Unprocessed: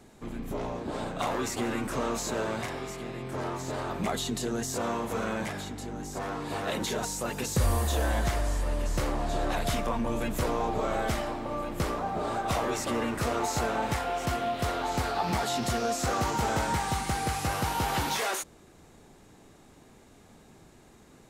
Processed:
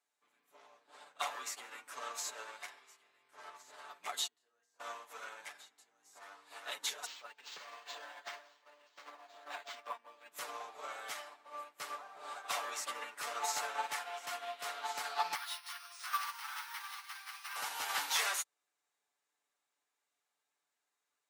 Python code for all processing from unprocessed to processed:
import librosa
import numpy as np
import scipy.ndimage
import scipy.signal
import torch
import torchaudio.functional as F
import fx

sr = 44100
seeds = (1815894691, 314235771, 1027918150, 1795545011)

y = fx.chain(x, sr, fx.lowpass(hz=2200.0, slope=6),
    fx.comb_fb(f0_hz=160.0, decay_s=0.59, harmonics='all', damping=0.0, mix_pct=80), at=(4.27, 4.8))
y = fx.chain(y, sr, fx.highpass(hz=180.0, slope=24),
    fx.tremolo_shape(shape='saw_down', hz=2.5, depth_pct=35),
    fx.resample_linear(factor=4), at=(7.06, 10.32))
y = fx.chain(y, sr, fx.ellip_bandpass(low_hz=1000.0, high_hz=5700.0, order=3, stop_db=50),
    fx.resample_bad(factor=3, down='none', up='hold'), at=(15.35, 17.56))
y = scipy.signal.sosfilt(scipy.signal.butter(2, 1100.0, 'highpass', fs=sr, output='sos'), y)
y = y + 0.54 * np.pad(y, (int(6.9 * sr / 1000.0), 0))[:len(y)]
y = fx.upward_expand(y, sr, threshold_db=-47.0, expansion=2.5)
y = y * librosa.db_to_amplitude(1.0)